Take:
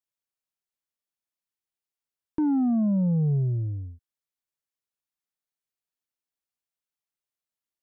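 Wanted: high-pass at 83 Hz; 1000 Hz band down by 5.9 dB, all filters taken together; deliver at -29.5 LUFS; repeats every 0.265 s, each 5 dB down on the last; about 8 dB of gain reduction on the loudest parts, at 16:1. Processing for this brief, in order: HPF 83 Hz; bell 1000 Hz -8.5 dB; compressor 16:1, threshold -29 dBFS; feedback echo 0.265 s, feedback 56%, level -5 dB; gain +3 dB

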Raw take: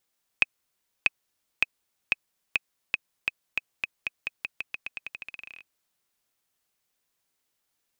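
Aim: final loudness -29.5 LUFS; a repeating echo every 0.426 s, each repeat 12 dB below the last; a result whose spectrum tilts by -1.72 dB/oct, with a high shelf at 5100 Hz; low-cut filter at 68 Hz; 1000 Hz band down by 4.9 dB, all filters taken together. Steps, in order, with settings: HPF 68 Hz; bell 1000 Hz -7 dB; high shelf 5100 Hz +7.5 dB; feedback echo 0.426 s, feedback 25%, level -12 dB; gain +2.5 dB

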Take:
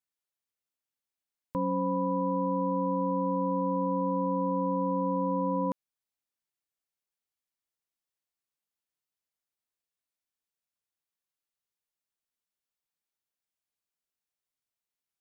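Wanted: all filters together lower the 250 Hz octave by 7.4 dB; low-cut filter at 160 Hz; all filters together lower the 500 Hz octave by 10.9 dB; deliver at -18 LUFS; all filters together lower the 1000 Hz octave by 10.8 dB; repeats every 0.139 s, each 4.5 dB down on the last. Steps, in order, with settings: HPF 160 Hz; bell 250 Hz -6 dB; bell 500 Hz -8 dB; bell 1000 Hz -9 dB; feedback echo 0.139 s, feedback 60%, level -4.5 dB; gain +23 dB

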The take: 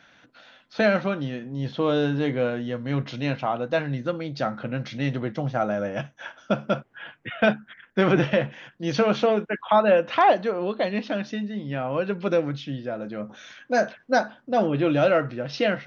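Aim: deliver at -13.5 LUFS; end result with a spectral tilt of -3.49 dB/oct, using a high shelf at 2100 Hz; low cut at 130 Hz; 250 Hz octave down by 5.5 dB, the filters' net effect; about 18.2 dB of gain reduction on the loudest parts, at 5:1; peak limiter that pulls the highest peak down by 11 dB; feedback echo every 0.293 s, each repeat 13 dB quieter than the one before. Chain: HPF 130 Hz; bell 250 Hz -7 dB; high shelf 2100 Hz +5 dB; compressor 5:1, threshold -35 dBFS; limiter -29 dBFS; feedback echo 0.293 s, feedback 22%, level -13 dB; gain +26.5 dB

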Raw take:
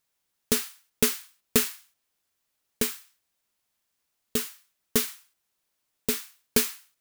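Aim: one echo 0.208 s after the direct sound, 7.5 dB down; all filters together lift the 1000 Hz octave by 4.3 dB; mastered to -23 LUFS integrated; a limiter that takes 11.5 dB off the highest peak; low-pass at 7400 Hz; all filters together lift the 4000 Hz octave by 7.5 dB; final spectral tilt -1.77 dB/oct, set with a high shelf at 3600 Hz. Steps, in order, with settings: LPF 7400 Hz; bell 1000 Hz +4.5 dB; high shelf 3600 Hz +7.5 dB; bell 4000 Hz +4.5 dB; limiter -15 dBFS; echo 0.208 s -7.5 dB; gain +8 dB

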